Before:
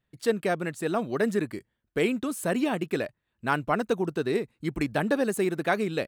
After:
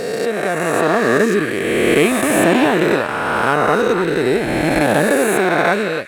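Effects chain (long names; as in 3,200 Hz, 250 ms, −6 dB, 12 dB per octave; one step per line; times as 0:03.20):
peak hold with a rise ahead of every peak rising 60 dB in 2.83 s
echo through a band-pass that steps 275 ms, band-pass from 1,500 Hz, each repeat 0.7 octaves, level −5.5 dB
automatic gain control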